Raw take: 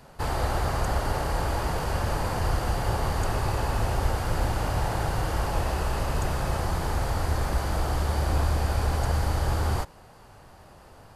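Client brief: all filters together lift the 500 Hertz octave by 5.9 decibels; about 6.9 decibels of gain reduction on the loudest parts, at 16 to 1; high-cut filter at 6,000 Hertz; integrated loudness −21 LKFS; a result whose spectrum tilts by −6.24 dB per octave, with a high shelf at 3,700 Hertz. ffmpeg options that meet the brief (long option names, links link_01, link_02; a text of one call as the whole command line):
ffmpeg -i in.wav -af "lowpass=6000,equalizer=frequency=500:width_type=o:gain=7.5,highshelf=frequency=3700:gain=-8,acompressor=threshold=-26dB:ratio=16,volume=11dB" out.wav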